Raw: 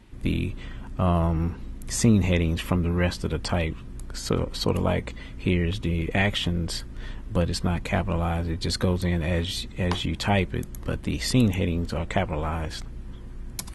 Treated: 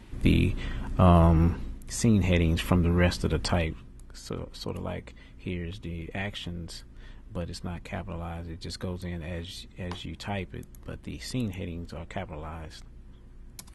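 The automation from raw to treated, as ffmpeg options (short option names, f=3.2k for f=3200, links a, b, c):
-af "volume=11.5dB,afade=t=out:st=1.53:d=0.3:silence=0.281838,afade=t=in:st=1.83:d=0.74:silence=0.398107,afade=t=out:st=3.46:d=0.46:silence=0.281838"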